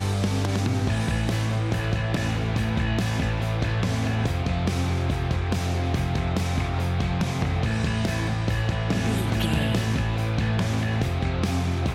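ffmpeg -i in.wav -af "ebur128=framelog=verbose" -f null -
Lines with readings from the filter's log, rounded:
Integrated loudness:
  I:         -25.2 LUFS
  Threshold: -35.2 LUFS
Loudness range:
  LRA:         0.8 LU
  Threshold: -45.3 LUFS
  LRA low:   -25.6 LUFS
  LRA high:  -24.8 LUFS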